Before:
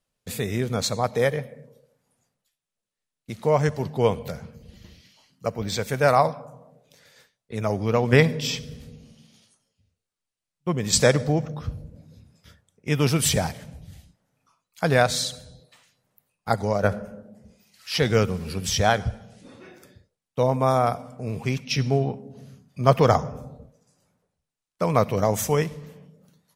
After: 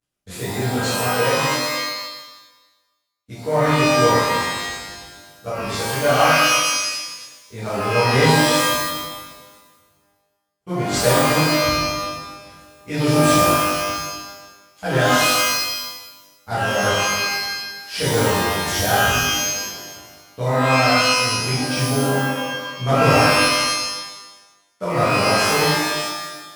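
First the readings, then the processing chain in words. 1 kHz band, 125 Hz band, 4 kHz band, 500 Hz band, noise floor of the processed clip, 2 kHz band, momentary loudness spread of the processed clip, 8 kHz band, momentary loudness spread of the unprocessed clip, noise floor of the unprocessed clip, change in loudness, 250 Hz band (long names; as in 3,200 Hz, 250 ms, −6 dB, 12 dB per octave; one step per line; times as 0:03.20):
+8.0 dB, +2.0 dB, +11.0 dB, +3.5 dB, −64 dBFS, +11.0 dB, 16 LU, +8.5 dB, 17 LU, below −85 dBFS, +5.0 dB, +5.5 dB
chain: variable-slope delta modulation 64 kbit/s
reverb with rising layers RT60 1.1 s, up +12 semitones, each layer −2 dB, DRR −12 dB
level −9.5 dB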